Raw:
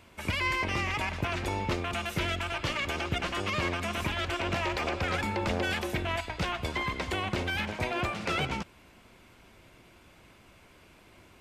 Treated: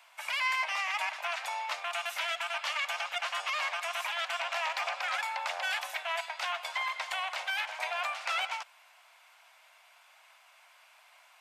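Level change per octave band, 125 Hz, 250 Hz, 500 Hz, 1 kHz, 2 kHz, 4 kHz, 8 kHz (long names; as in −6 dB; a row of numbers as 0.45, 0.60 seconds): below −40 dB, below −40 dB, −8.0 dB, 0.0 dB, 0.0 dB, 0.0 dB, 0.0 dB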